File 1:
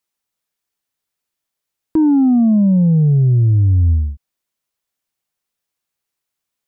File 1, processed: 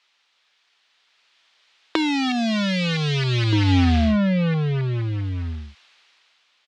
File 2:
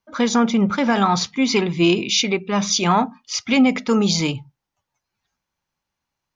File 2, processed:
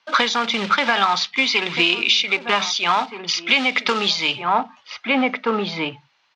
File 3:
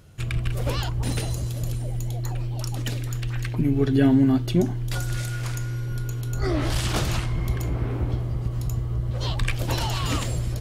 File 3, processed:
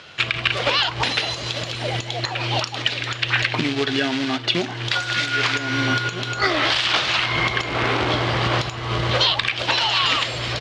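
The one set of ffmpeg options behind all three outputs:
-filter_complex "[0:a]equalizer=f=810:t=o:w=2.7:g=3.5,acrossover=split=160[s0][s1];[s1]acrusher=bits=4:mode=log:mix=0:aa=0.000001[s2];[s0][s2]amix=inputs=2:normalize=0,dynaudnorm=f=220:g=11:m=6.31,highpass=42,aderivative,asplit=2[s3][s4];[s4]adelay=1574,volume=0.224,highshelf=f=4000:g=-35.4[s5];[s3][s5]amix=inputs=2:normalize=0,acompressor=threshold=0.01:ratio=16,lowpass=f=3700:w=0.5412,lowpass=f=3700:w=1.3066,alimiter=level_in=47.3:limit=0.891:release=50:level=0:latency=1,volume=0.708"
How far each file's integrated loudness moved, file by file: -8.0 LU, 0.0 LU, +5.0 LU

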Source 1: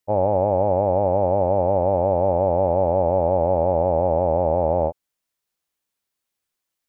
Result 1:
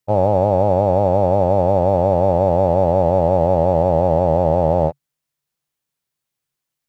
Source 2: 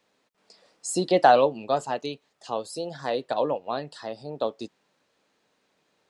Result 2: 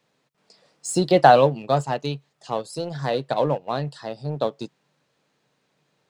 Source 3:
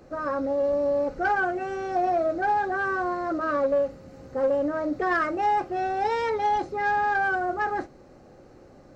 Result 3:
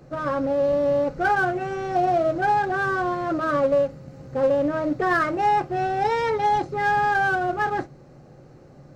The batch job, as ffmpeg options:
-filter_complex "[0:a]equalizer=f=140:t=o:w=0.44:g=15,asplit=2[s0][s1];[s1]aeval=exprs='sgn(val(0))*max(abs(val(0))-0.02,0)':c=same,volume=0.531[s2];[s0][s2]amix=inputs=2:normalize=0"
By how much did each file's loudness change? +4.0 LU, +4.0 LU, +3.0 LU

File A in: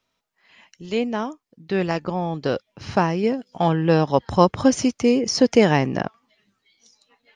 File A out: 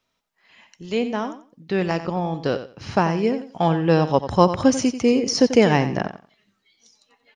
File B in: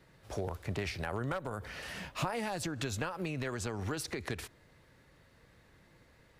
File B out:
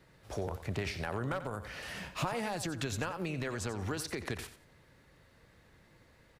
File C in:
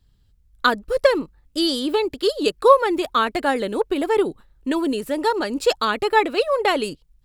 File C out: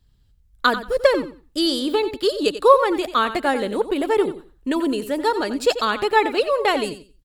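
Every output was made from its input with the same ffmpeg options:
-af "aecho=1:1:90|180|270:0.251|0.0502|0.01"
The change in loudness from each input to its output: 0.0 LU, +0.5 LU, +0.5 LU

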